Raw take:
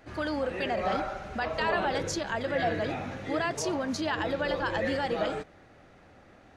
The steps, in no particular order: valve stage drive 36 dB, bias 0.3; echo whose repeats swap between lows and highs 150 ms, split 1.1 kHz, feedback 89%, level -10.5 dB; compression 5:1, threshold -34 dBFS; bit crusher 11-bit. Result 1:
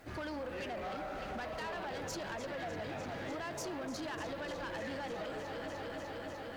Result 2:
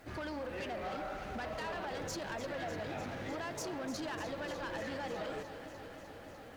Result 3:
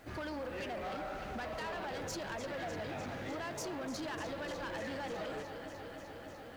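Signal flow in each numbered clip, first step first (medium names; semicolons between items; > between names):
echo whose repeats swap between lows and highs > compression > bit crusher > valve stage; compression > bit crusher > valve stage > echo whose repeats swap between lows and highs; compression > echo whose repeats swap between lows and highs > valve stage > bit crusher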